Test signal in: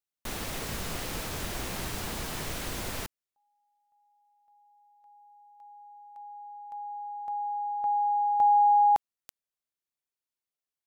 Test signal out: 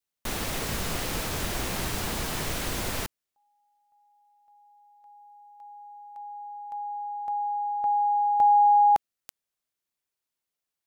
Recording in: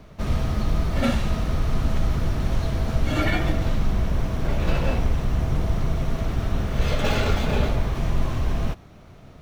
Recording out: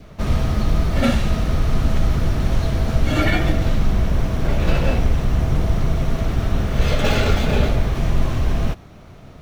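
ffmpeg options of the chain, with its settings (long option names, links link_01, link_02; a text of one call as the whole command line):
ffmpeg -i in.wav -af "adynamicequalizer=threshold=0.00794:dfrequency=990:dqfactor=3:tfrequency=990:tqfactor=3:attack=5:release=100:ratio=0.375:range=2.5:mode=cutabove:tftype=bell,volume=4.5dB" out.wav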